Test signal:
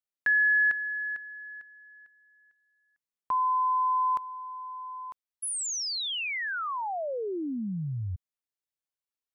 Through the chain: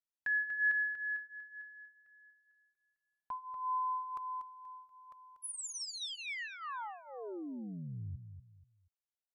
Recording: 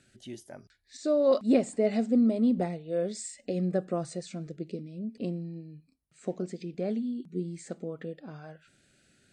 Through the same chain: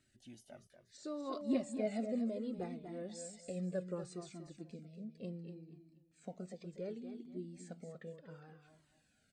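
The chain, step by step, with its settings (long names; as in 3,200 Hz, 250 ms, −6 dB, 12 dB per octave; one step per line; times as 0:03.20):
on a send: repeating echo 240 ms, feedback 30%, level −9 dB
on the sum: flanger whose copies keep moving one way falling 0.68 Hz
level −6.5 dB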